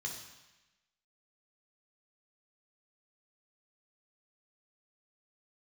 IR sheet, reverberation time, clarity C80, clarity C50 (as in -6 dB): 1.0 s, 7.5 dB, 5.0 dB